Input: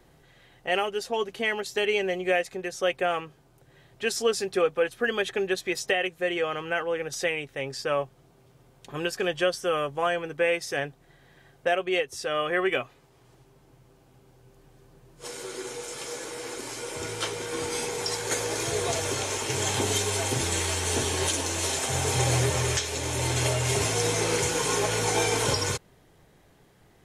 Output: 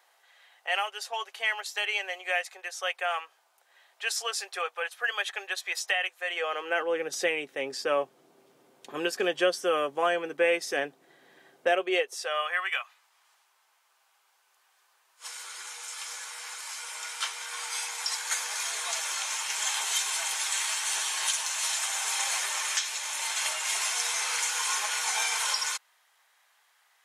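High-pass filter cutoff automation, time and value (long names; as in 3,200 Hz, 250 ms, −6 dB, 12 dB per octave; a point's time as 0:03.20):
high-pass filter 24 dB per octave
0:06.25 740 Hz
0:06.97 230 Hz
0:11.67 230 Hz
0:12.63 960 Hz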